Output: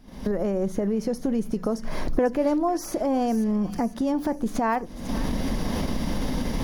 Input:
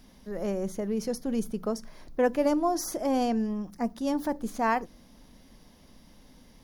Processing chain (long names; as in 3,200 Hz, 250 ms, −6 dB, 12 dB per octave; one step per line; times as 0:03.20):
camcorder AGC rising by 79 dB per second
high-shelf EQ 2,200 Hz −9 dB
in parallel at −2 dB: output level in coarse steps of 16 dB
on the sum: delay with a high-pass on its return 497 ms, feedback 46%, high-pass 1,700 Hz, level −9.5 dB